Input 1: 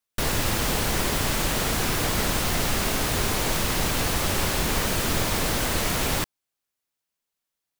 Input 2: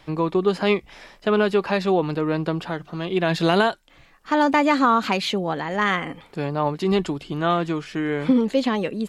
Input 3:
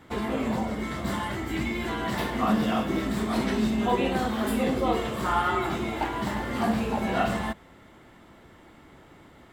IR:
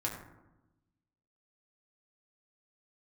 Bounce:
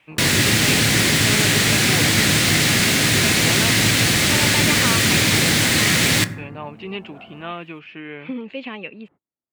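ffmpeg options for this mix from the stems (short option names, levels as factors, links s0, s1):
-filter_complex "[0:a]equalizer=f=125:t=o:w=1:g=8,equalizer=f=250:t=o:w=1:g=7,equalizer=f=1000:t=o:w=1:g=-5,equalizer=f=2000:t=o:w=1:g=11,equalizer=f=4000:t=o:w=1:g=7,equalizer=f=8000:t=o:w=1:g=7,volume=0.944,asplit=2[s0][s1];[s1]volume=0.316[s2];[1:a]lowpass=f=2600:t=q:w=6.9,volume=0.266,asplit=2[s3][s4];[2:a]lowpass=1200,acompressor=threshold=0.0398:ratio=6,volume=0.237[s5];[s4]apad=whole_len=420123[s6];[s5][s6]sidechaingate=range=0.0224:threshold=0.00316:ratio=16:detection=peak[s7];[3:a]atrim=start_sample=2205[s8];[s2][s8]afir=irnorm=-1:irlink=0[s9];[s0][s3][s7][s9]amix=inputs=4:normalize=0,highpass=97"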